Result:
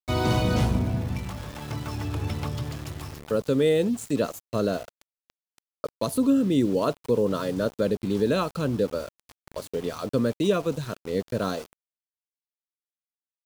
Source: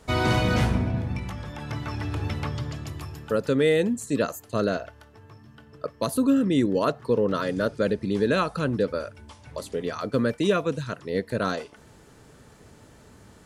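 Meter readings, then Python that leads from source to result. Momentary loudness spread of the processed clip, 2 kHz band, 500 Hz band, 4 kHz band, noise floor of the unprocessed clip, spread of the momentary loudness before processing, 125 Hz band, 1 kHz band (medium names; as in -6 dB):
13 LU, -6.0 dB, -0.5 dB, -1.5 dB, -53 dBFS, 13 LU, 0.0 dB, -2.5 dB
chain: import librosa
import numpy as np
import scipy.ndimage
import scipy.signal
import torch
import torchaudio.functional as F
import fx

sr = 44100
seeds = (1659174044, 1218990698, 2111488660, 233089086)

y = np.where(np.abs(x) >= 10.0 ** (-37.0 / 20.0), x, 0.0)
y = fx.dynamic_eq(y, sr, hz=1800.0, q=1.4, threshold_db=-45.0, ratio=4.0, max_db=-8)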